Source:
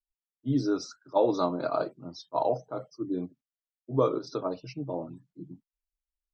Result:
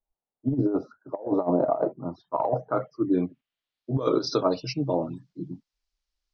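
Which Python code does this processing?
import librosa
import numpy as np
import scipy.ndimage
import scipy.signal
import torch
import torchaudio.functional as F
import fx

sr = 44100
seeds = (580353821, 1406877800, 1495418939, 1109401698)

y = fx.filter_sweep_lowpass(x, sr, from_hz=740.0, to_hz=5100.0, start_s=1.7, end_s=4.12, q=2.2)
y = fx.over_compress(y, sr, threshold_db=-27.0, ratio=-0.5)
y = F.gain(torch.from_numpy(y), 4.5).numpy()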